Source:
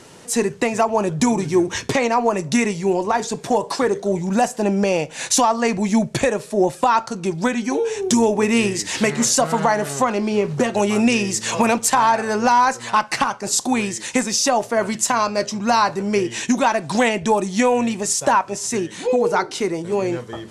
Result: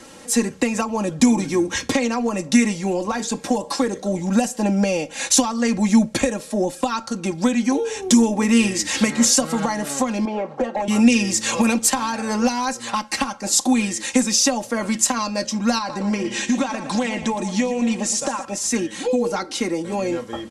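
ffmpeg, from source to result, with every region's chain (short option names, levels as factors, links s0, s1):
-filter_complex "[0:a]asettb=1/sr,asplit=3[s0][s1][s2];[s0]atrim=end=10.254[s3];[s1]atrim=start=10.25:end=10.88,asetpts=PTS-STARTPTS,afade=t=in:d=0.004:c=qsin,afade=t=out:st=0.626:d=0.004:c=qsin,bandpass=f=740:t=q:w=1.9,aeval=exprs='0.266*sin(PI/2*1.41*val(0)/0.266)':c=same[s4];[s2]atrim=start=10.876[s5];[s3][s4]acrossfade=d=0.004:c1=hsin:c2=qsin[s6];[s6][s5]acrossfade=d=0.004:c1=qsin:c2=hsin,asettb=1/sr,asplit=3[s7][s8][s9];[s7]atrim=end=15.784[s10];[s8]atrim=start=15.78:end=18.45,asetpts=PTS-STARTPTS,afade=t=in:d=0.004:c=qsin,afade=t=out:st=2.666:d=0.004:c=qsin,lowpass=8600,acompressor=threshold=0.112:ratio=5:attack=3.2:release=140:knee=1:detection=peak,aecho=1:1:116|232|348|464:0.251|0.111|0.0486|0.0214,atrim=end_sample=117747[s11];[s9]atrim=start=18.446[s12];[s10][s11]acrossfade=d=0.004:c1=hsin:c2=qsin[s13];[s13][s12]acrossfade=d=0.004:c1=qsin:c2=hsin,aecho=1:1:3.7:0.73,acrossover=split=330|3000[s14][s15][s16];[s15]acompressor=threshold=0.0708:ratio=6[s17];[s14][s17][s16]amix=inputs=3:normalize=0"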